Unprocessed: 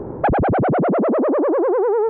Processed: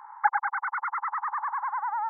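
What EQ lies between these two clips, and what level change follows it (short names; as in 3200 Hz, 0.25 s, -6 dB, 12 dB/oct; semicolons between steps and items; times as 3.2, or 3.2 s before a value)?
brick-wall FIR band-pass 810–2200 Hz; 0.0 dB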